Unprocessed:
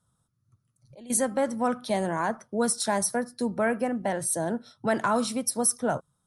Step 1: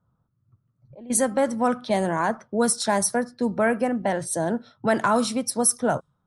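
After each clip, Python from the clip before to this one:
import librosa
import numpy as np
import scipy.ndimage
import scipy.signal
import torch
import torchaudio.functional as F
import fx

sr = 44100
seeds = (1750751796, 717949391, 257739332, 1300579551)

y = fx.env_lowpass(x, sr, base_hz=1200.0, full_db=-21.5)
y = y * librosa.db_to_amplitude(4.0)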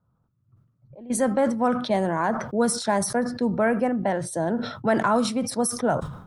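y = fx.high_shelf(x, sr, hz=3500.0, db=-10.0)
y = fx.sustainer(y, sr, db_per_s=76.0)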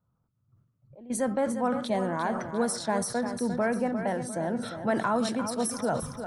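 y = fx.echo_feedback(x, sr, ms=350, feedback_pct=42, wet_db=-9.0)
y = y * librosa.db_to_amplitude(-5.5)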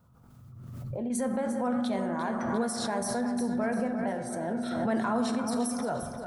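y = fx.rev_fdn(x, sr, rt60_s=1.6, lf_ratio=0.8, hf_ratio=0.35, size_ms=25.0, drr_db=5.5)
y = fx.pre_swell(y, sr, db_per_s=31.0)
y = y * librosa.db_to_amplitude(-5.0)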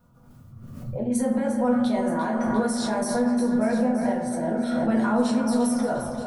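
y = x + 10.0 ** (-14.0 / 20.0) * np.pad(x, (int(925 * sr / 1000.0), 0))[:len(x)]
y = fx.room_shoebox(y, sr, seeds[0], volume_m3=140.0, walls='furnished', distance_m=1.8)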